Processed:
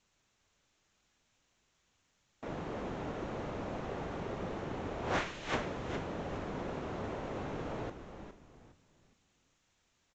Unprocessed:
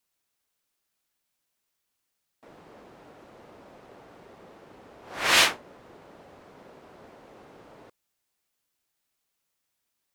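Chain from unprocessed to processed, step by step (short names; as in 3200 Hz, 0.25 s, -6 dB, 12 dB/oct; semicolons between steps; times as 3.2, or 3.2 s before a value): bell 4800 Hz -5.5 dB 0.38 oct; doubler 40 ms -13 dB; negative-ratio compressor -38 dBFS, ratio -1; low shelf 200 Hz +10.5 dB; frequency-shifting echo 0.411 s, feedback 31%, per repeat -96 Hz, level -8.5 dB; Vorbis 96 kbps 16000 Hz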